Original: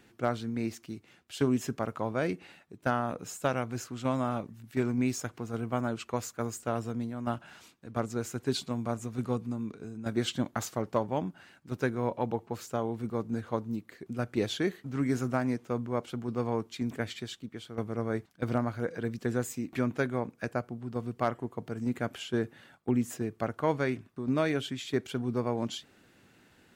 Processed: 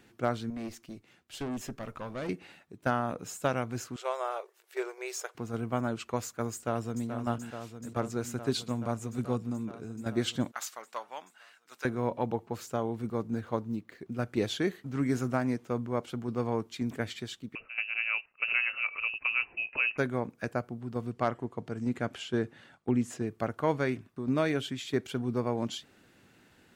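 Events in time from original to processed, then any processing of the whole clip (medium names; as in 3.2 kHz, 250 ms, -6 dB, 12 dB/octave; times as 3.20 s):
0.50–2.29 s: valve stage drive 32 dB, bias 0.55
3.96–5.35 s: brick-wall FIR high-pass 360 Hz
6.53–7.07 s: echo throw 430 ms, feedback 85%, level -8.5 dB
10.52–11.85 s: high-pass 1.2 kHz
13.28–14.23 s: median filter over 5 samples
17.55–19.98 s: frequency inversion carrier 2.8 kHz
21.11–23.27 s: low-pass 8.8 kHz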